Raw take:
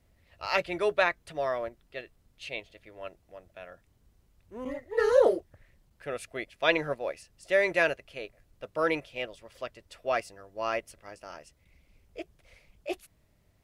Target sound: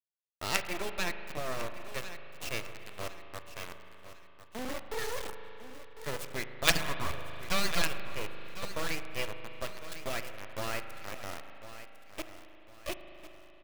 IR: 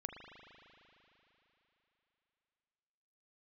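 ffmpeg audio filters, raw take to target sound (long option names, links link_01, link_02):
-filter_complex "[0:a]aeval=exprs='0.376*(cos(1*acos(clip(val(0)/0.376,-1,1)))-cos(1*PI/2))+0.0841*(cos(4*acos(clip(val(0)/0.376,-1,1)))-cos(4*PI/2))+0.0168*(cos(6*acos(clip(val(0)/0.376,-1,1)))-cos(6*PI/2))+0.0075*(cos(7*acos(clip(val(0)/0.376,-1,1)))-cos(7*PI/2))':channel_layout=same,asettb=1/sr,asplit=3[link_01][link_02][link_03];[link_01]atrim=end=11.344[link_04];[link_02]atrim=start=11.34:end=12.19,asetpts=PTS-STARTPTS,afade=type=in:duration=0.004:curve=qsin,afade=type=out:start_time=0.846:duration=0.004:curve=qsin,equalizer=frequency=300:width_type=o:width=1.2:gain=-9[link_05];[link_03]atrim=start=12.186[link_06];[link_04][link_05]acrossfade=duration=0.004:curve1=hsin:curve2=qsin[link_07];[link_07][link_06]acrossfade=duration=0.004:curve1=qsin:curve2=hsin,acrossover=split=1900[link_08][link_09];[link_08]acompressor=threshold=-35dB:ratio=16[link_10];[link_10][link_09]amix=inputs=2:normalize=0,bandreject=frequency=67.4:width_type=h:width=4,bandreject=frequency=134.8:width_type=h:width=4,bandreject=frequency=202.2:width_type=h:width=4,bandreject=frequency=269.6:width_type=h:width=4,bandreject=frequency=337:width_type=h:width=4,bandreject=frequency=404.4:width_type=h:width=4,bandreject=frequency=471.8:width_type=h:width=4,asettb=1/sr,asplit=3[link_11][link_12][link_13];[link_11]atrim=end=6.704[link_14];[link_12]atrim=start=6.7:end=7.82,asetpts=PTS-STARTPTS,afade=type=in:duration=0.004:curve=qsin,afade=type=out:start_time=1.116:duration=0.004:curve=qsin,aeval=exprs='abs(val(0))':channel_layout=same[link_15];[link_13]atrim=start=7.816[link_16];[link_14][link_15]acrossfade=duration=0.004:curve1=hsin:curve2=qsin[link_17];[link_17][link_16]acrossfade=duration=0.004:curve1=qsin:curve2=hsin,acrusher=bits=4:dc=4:mix=0:aa=0.000001,aecho=1:1:1052|2104|3156:0.211|0.0761|0.0274,asplit=2[link_18][link_19];[1:a]atrim=start_sample=2205[link_20];[link_19][link_20]afir=irnorm=-1:irlink=0,volume=3.5dB[link_21];[link_18][link_21]amix=inputs=2:normalize=0,adynamicequalizer=threshold=0.00562:dfrequency=2000:dqfactor=0.7:tfrequency=2000:tqfactor=0.7:attack=5:release=100:ratio=0.375:range=2.5:mode=cutabove:tftype=highshelf"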